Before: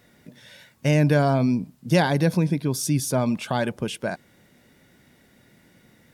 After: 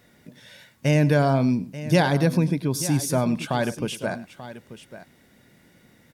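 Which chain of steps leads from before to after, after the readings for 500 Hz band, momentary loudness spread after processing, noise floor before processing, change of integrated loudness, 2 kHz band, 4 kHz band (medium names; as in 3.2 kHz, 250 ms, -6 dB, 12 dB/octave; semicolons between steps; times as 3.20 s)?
0.0 dB, 12 LU, -58 dBFS, 0.0 dB, 0.0 dB, 0.0 dB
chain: multi-tap echo 102/886 ms -18/-14.5 dB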